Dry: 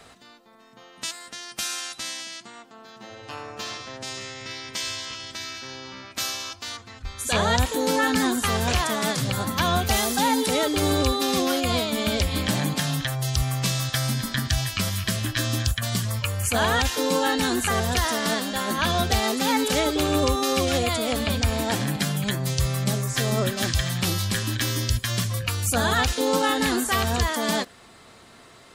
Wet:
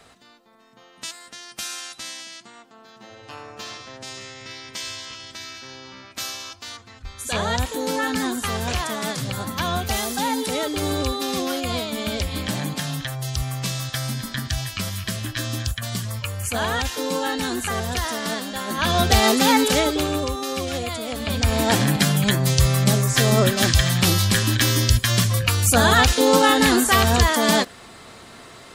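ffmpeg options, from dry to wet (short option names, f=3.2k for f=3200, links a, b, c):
-af "volume=18dB,afade=t=in:st=18.68:d=0.61:silence=0.334965,afade=t=out:st=19.29:d=0.96:silence=0.266073,afade=t=in:st=21.18:d=0.54:silence=0.298538"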